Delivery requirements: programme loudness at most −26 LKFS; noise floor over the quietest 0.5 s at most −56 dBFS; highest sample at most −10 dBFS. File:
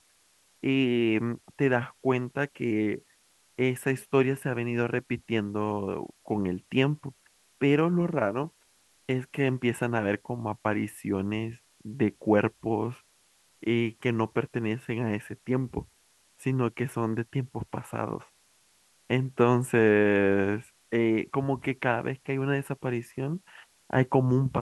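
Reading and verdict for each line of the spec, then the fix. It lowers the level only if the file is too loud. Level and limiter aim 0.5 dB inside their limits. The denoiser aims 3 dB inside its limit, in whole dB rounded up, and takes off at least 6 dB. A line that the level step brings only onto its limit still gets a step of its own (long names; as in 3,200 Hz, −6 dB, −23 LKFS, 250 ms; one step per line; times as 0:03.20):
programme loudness −28.5 LKFS: in spec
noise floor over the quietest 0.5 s −65 dBFS: in spec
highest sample −8.5 dBFS: out of spec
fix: brickwall limiter −10.5 dBFS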